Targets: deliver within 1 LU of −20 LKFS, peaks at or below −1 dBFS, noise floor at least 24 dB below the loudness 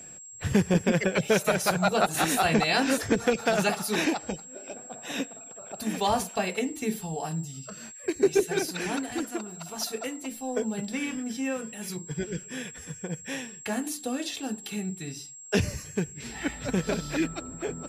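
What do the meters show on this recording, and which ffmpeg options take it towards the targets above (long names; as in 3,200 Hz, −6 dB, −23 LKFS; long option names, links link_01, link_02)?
interfering tone 7,600 Hz; level of the tone −43 dBFS; integrated loudness −28.5 LKFS; sample peak −11.0 dBFS; target loudness −20.0 LKFS
→ -af "bandreject=frequency=7600:width=30"
-af "volume=8.5dB"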